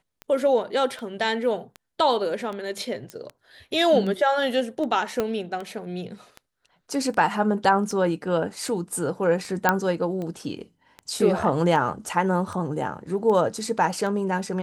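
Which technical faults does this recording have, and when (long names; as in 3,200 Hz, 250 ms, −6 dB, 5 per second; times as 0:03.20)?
scratch tick 78 rpm −22 dBFS
0:03.10: click −20 dBFS
0:05.20: click −11 dBFS
0:09.69: click −4 dBFS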